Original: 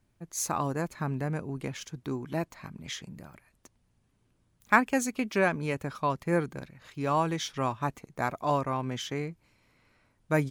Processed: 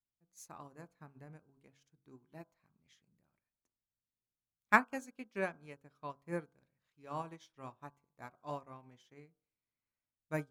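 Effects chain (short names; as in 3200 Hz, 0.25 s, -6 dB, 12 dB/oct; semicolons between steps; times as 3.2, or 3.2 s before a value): de-hum 45.92 Hz, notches 35; upward expander 2.5:1, over -37 dBFS; gain -2.5 dB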